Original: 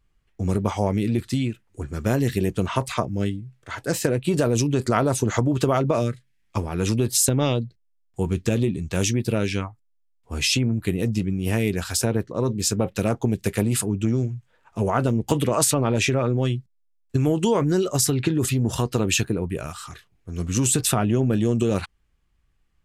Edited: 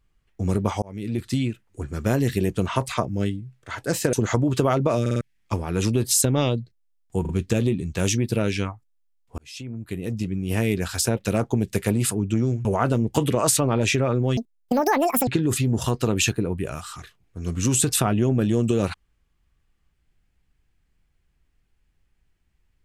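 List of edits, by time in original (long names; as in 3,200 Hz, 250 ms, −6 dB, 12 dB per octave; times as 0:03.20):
0:00.82–0:01.32: fade in
0:04.13–0:05.17: remove
0:06.05: stutter in place 0.05 s, 4 plays
0:08.25: stutter 0.04 s, 3 plays
0:10.34–0:11.60: fade in
0:12.13–0:12.88: remove
0:14.36–0:14.79: remove
0:16.51–0:18.19: play speed 186%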